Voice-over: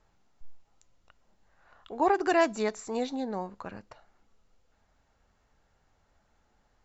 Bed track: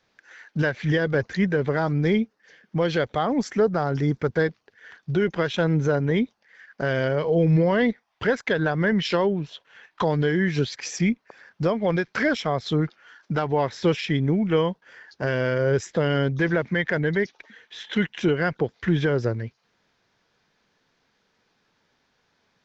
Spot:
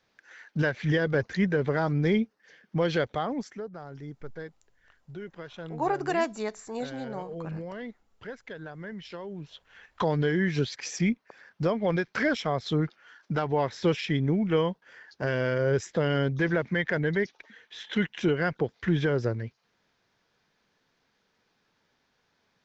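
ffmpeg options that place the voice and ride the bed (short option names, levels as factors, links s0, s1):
-filter_complex "[0:a]adelay=3800,volume=0.708[s0];[1:a]volume=3.76,afade=t=out:st=2.99:d=0.63:silence=0.177828,afade=t=in:st=9.27:d=0.47:silence=0.188365[s1];[s0][s1]amix=inputs=2:normalize=0"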